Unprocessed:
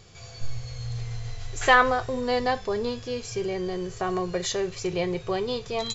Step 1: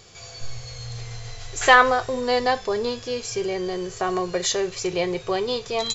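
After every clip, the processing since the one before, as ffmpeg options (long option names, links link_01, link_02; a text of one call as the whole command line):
ffmpeg -i in.wav -af "bass=frequency=250:gain=-7,treble=frequency=4000:gain=3,volume=4dB" out.wav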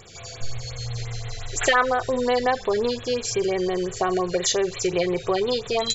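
ffmpeg -i in.wav -af "acompressor=threshold=-24dB:ratio=2,afftfilt=real='re*(1-between(b*sr/1024,890*pow(6300/890,0.5+0.5*sin(2*PI*5.7*pts/sr))/1.41,890*pow(6300/890,0.5+0.5*sin(2*PI*5.7*pts/sr))*1.41))':imag='im*(1-between(b*sr/1024,890*pow(6300/890,0.5+0.5*sin(2*PI*5.7*pts/sr))/1.41,890*pow(6300/890,0.5+0.5*sin(2*PI*5.7*pts/sr))*1.41))':win_size=1024:overlap=0.75,volume=4dB" out.wav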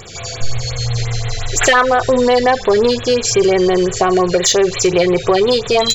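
ffmpeg -i in.wav -filter_complex "[0:a]asplit=2[link_01][link_02];[link_02]alimiter=limit=-15dB:level=0:latency=1:release=308,volume=1dB[link_03];[link_01][link_03]amix=inputs=2:normalize=0,asoftclip=type=tanh:threshold=-7.5dB,volume=5.5dB" out.wav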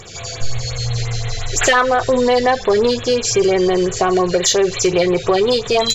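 ffmpeg -i in.wav -af "volume=-2dB" -ar 44100 -c:a libvorbis -b:a 48k out.ogg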